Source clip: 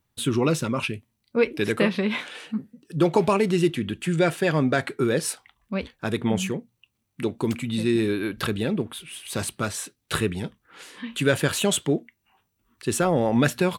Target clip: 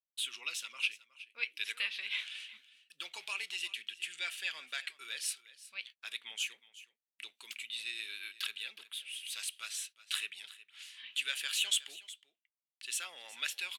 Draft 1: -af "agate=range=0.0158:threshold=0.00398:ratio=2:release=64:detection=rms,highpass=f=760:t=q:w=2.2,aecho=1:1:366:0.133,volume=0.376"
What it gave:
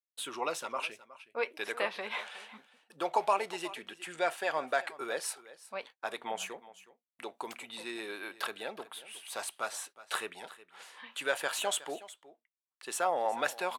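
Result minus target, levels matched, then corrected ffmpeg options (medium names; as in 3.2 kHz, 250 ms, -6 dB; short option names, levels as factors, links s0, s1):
1 kHz band +19.0 dB
-af "agate=range=0.0158:threshold=0.00398:ratio=2:release=64:detection=rms,highpass=f=2800:t=q:w=2.2,aecho=1:1:366:0.133,volume=0.376"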